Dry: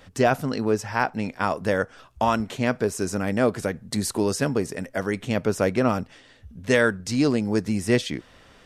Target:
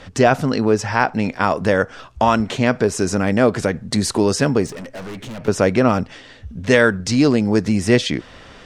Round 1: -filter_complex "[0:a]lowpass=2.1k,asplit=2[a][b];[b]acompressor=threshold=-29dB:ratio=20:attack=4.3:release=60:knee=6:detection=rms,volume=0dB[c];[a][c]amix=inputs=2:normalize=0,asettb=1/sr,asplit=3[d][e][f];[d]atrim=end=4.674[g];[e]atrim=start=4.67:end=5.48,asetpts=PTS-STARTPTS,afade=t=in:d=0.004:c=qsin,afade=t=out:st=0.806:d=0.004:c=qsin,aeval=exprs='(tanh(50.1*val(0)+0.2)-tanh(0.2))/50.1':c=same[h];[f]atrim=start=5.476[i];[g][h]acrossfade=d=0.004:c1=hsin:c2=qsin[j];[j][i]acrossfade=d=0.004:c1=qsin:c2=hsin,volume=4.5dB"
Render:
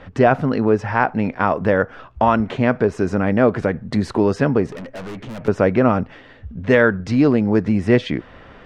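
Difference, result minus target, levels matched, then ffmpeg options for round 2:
8000 Hz band -18.0 dB
-filter_complex "[0:a]lowpass=7.2k,asplit=2[a][b];[b]acompressor=threshold=-29dB:ratio=20:attack=4.3:release=60:knee=6:detection=rms,volume=0dB[c];[a][c]amix=inputs=2:normalize=0,asettb=1/sr,asplit=3[d][e][f];[d]atrim=end=4.674[g];[e]atrim=start=4.67:end=5.48,asetpts=PTS-STARTPTS,afade=t=in:d=0.004:c=qsin,afade=t=out:st=0.806:d=0.004:c=qsin,aeval=exprs='(tanh(50.1*val(0)+0.2)-tanh(0.2))/50.1':c=same[h];[f]atrim=start=5.476[i];[g][h]acrossfade=d=0.004:c1=hsin:c2=qsin[j];[j][i]acrossfade=d=0.004:c1=qsin:c2=hsin,volume=4.5dB"

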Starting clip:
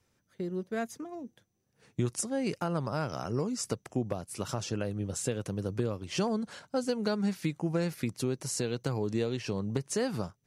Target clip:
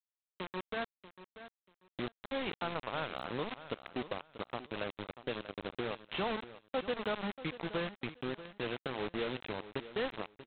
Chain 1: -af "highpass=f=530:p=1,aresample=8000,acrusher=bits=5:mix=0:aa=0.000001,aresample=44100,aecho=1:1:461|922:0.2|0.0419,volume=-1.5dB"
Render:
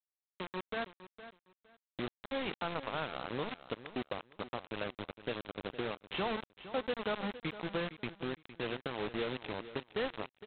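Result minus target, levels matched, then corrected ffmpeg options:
echo 0.176 s early
-af "highpass=f=530:p=1,aresample=8000,acrusher=bits=5:mix=0:aa=0.000001,aresample=44100,aecho=1:1:637|1274:0.2|0.0419,volume=-1.5dB"

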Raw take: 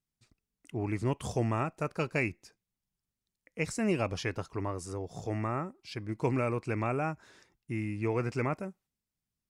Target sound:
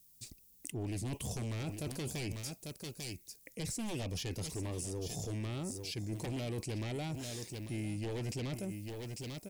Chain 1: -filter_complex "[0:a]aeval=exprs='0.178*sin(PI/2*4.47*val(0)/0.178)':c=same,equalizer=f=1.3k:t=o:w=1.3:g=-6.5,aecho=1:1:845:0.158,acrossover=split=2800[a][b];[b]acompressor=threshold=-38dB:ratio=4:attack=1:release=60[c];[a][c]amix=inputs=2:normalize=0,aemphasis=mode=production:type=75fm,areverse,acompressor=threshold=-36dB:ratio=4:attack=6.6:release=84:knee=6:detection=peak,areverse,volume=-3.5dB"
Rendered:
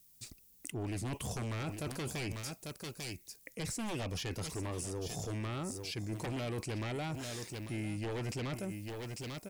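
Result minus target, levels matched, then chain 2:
1000 Hz band +4.5 dB
-filter_complex "[0:a]aeval=exprs='0.178*sin(PI/2*4.47*val(0)/0.178)':c=same,equalizer=f=1.3k:t=o:w=1.3:g=-16.5,aecho=1:1:845:0.158,acrossover=split=2800[a][b];[b]acompressor=threshold=-38dB:ratio=4:attack=1:release=60[c];[a][c]amix=inputs=2:normalize=0,aemphasis=mode=production:type=75fm,areverse,acompressor=threshold=-36dB:ratio=4:attack=6.6:release=84:knee=6:detection=peak,areverse,volume=-3.5dB"

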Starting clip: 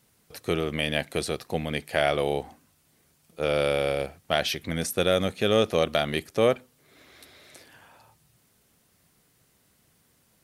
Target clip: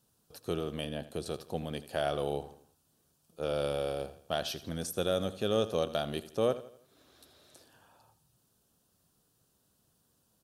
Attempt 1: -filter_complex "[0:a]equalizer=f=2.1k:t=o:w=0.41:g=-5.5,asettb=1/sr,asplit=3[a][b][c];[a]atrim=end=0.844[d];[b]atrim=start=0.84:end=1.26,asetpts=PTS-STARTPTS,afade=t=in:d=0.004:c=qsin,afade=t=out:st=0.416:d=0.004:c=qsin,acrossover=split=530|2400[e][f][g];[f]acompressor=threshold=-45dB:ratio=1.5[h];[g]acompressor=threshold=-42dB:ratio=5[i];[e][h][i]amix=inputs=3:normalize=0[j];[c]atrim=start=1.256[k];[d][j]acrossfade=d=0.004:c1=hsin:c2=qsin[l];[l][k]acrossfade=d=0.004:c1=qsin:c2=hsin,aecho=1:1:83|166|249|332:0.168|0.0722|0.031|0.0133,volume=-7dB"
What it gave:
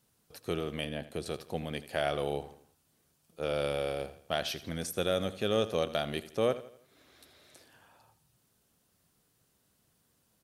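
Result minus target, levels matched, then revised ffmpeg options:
2000 Hz band +4.0 dB
-filter_complex "[0:a]equalizer=f=2.1k:t=o:w=0.41:g=-17,asettb=1/sr,asplit=3[a][b][c];[a]atrim=end=0.844[d];[b]atrim=start=0.84:end=1.26,asetpts=PTS-STARTPTS,afade=t=in:d=0.004:c=qsin,afade=t=out:st=0.416:d=0.004:c=qsin,acrossover=split=530|2400[e][f][g];[f]acompressor=threshold=-45dB:ratio=1.5[h];[g]acompressor=threshold=-42dB:ratio=5[i];[e][h][i]amix=inputs=3:normalize=0[j];[c]atrim=start=1.256[k];[d][j]acrossfade=d=0.004:c1=hsin:c2=qsin[l];[l][k]acrossfade=d=0.004:c1=qsin:c2=hsin,aecho=1:1:83|166|249|332:0.168|0.0722|0.031|0.0133,volume=-7dB"

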